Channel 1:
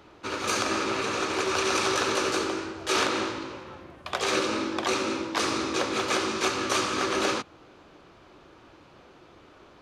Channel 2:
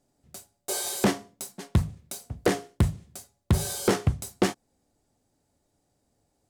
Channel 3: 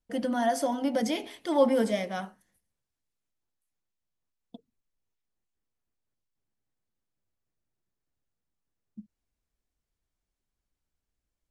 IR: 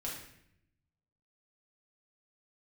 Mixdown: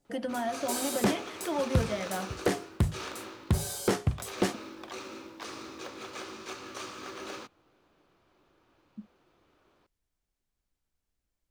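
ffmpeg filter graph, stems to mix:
-filter_complex "[0:a]acrusher=bits=6:mode=log:mix=0:aa=0.000001,adelay=50,volume=-15dB[link_01];[1:a]volume=-4dB[link_02];[2:a]acrossover=split=470|3400[link_03][link_04][link_05];[link_03]acompressor=threshold=-38dB:ratio=4[link_06];[link_04]acompressor=threshold=-34dB:ratio=4[link_07];[link_05]acompressor=threshold=-57dB:ratio=4[link_08];[link_06][link_07][link_08]amix=inputs=3:normalize=0,volume=1dB[link_09];[link_01][link_02][link_09]amix=inputs=3:normalize=0"

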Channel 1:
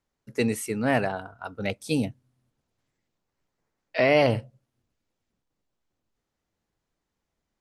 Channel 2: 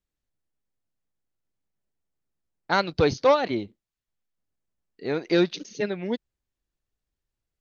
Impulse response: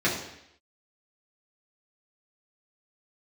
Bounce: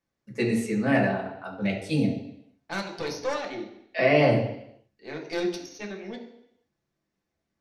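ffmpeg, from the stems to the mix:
-filter_complex "[0:a]lowpass=10000,volume=-4dB,asplit=2[link_01][link_02];[link_02]volume=-6.5dB[link_03];[1:a]highpass=frequency=440:poles=1,equalizer=frequency=5600:width=5.2:gain=14.5,aeval=exprs='(tanh(10*val(0)+0.65)-tanh(0.65))/10':channel_layout=same,volume=-4dB,asplit=2[link_04][link_05];[link_05]volume=-10.5dB[link_06];[2:a]atrim=start_sample=2205[link_07];[link_03][link_06]amix=inputs=2:normalize=0[link_08];[link_08][link_07]afir=irnorm=-1:irlink=0[link_09];[link_01][link_04][link_09]amix=inputs=3:normalize=0,flanger=delay=6.8:depth=3.3:regen=-88:speed=0.62:shape=triangular"

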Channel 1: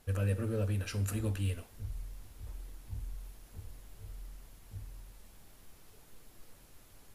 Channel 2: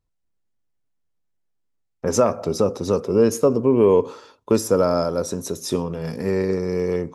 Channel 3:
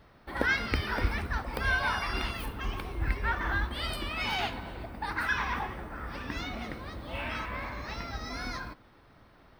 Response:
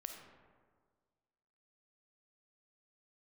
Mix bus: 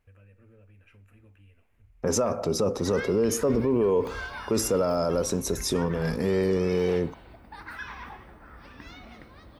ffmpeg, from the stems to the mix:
-filter_complex "[0:a]highshelf=frequency=3400:width_type=q:width=3:gain=-12,acompressor=threshold=-41dB:ratio=4,volume=-13.5dB[link_01];[1:a]volume=0.5dB[link_02];[2:a]adelay=2500,volume=-9dB[link_03];[link_01][link_02][link_03]amix=inputs=3:normalize=0,alimiter=limit=-16dB:level=0:latency=1:release=15"

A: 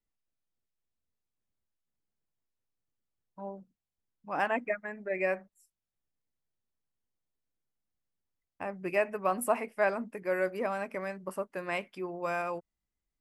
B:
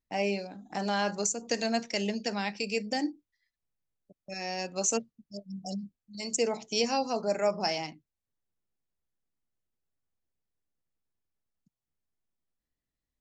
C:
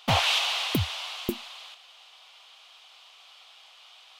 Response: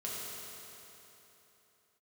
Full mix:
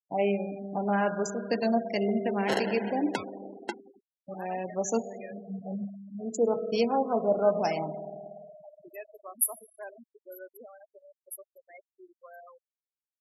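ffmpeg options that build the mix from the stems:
-filter_complex "[0:a]highpass=frequency=160:width=0.5412,highpass=frequency=160:width=1.3066,aemphasis=mode=production:type=50fm,aexciter=amount=6.8:drive=5.2:freq=8300,volume=-15.5dB,asplit=2[link_01][link_02];[link_02]volume=-14dB[link_03];[1:a]afwtdn=0.0141,lowpass=frequency=1900:poles=1,volume=1dB,asplit=2[link_04][link_05];[link_05]volume=-6.5dB[link_06];[2:a]lowpass=frequency=2400:width=0.5412,lowpass=frequency=2400:width=1.3066,acrusher=samples=37:mix=1:aa=0.000001,highpass=450,adelay=2400,volume=-1dB,asplit=2[link_07][link_08];[link_08]volume=-15.5dB[link_09];[3:a]atrim=start_sample=2205[link_10];[link_03][link_06][link_09]amix=inputs=3:normalize=0[link_11];[link_11][link_10]afir=irnorm=-1:irlink=0[link_12];[link_01][link_04][link_07][link_12]amix=inputs=4:normalize=0,afftfilt=real='re*gte(hypot(re,im),0.02)':imag='im*gte(hypot(re,im),0.02)':win_size=1024:overlap=0.75"

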